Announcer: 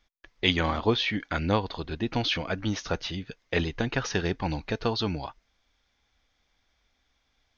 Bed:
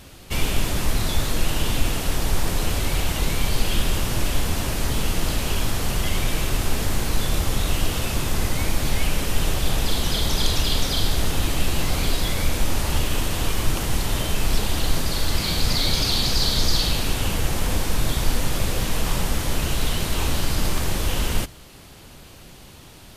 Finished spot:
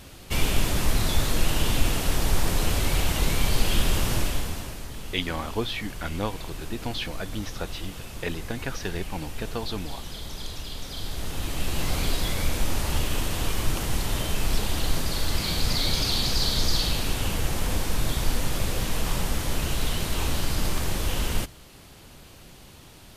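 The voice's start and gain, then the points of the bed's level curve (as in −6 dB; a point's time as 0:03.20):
4.70 s, −4.5 dB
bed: 0:04.14 −1 dB
0:04.88 −14.5 dB
0:10.76 −14.5 dB
0:11.89 −3.5 dB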